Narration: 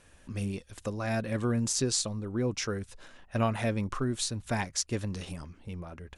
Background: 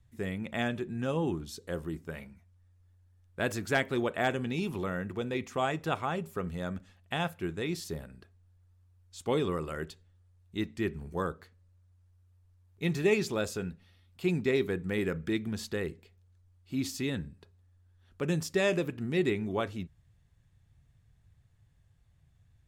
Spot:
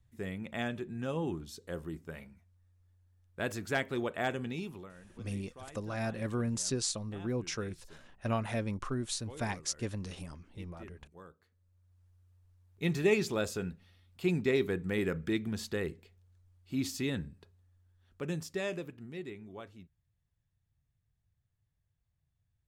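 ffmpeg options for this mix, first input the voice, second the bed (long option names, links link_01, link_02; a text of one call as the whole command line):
ffmpeg -i stem1.wav -i stem2.wav -filter_complex "[0:a]adelay=4900,volume=-4.5dB[link_01];[1:a]volume=15dB,afade=type=out:start_time=4.47:duration=0.45:silence=0.158489,afade=type=in:start_time=11.4:duration=0.64:silence=0.112202,afade=type=out:start_time=17.16:duration=2.09:silence=0.199526[link_02];[link_01][link_02]amix=inputs=2:normalize=0" out.wav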